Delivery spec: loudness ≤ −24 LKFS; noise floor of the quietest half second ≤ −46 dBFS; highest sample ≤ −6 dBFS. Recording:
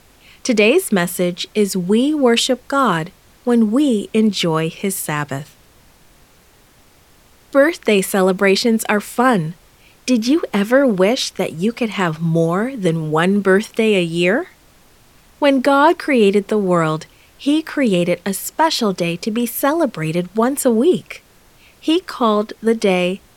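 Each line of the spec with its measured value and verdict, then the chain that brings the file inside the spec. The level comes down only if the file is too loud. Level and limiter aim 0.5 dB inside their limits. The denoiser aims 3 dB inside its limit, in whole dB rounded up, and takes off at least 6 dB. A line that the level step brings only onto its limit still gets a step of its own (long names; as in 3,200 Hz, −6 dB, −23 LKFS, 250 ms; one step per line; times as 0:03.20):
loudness −17.0 LKFS: out of spec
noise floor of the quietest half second −50 dBFS: in spec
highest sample −1.5 dBFS: out of spec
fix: level −7.5 dB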